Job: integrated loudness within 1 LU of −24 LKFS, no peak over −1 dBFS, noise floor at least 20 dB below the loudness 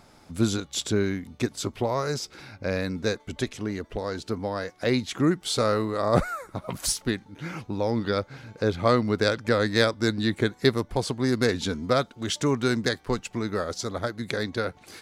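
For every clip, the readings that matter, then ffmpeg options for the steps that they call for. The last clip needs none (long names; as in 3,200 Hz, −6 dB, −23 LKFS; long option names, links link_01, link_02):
integrated loudness −27.0 LKFS; sample peak −7.5 dBFS; target loudness −24.0 LKFS
→ -af "volume=3dB"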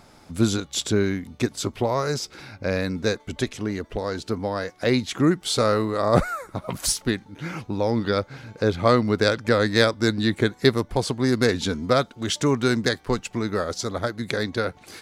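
integrated loudness −24.0 LKFS; sample peak −4.5 dBFS; background noise floor −52 dBFS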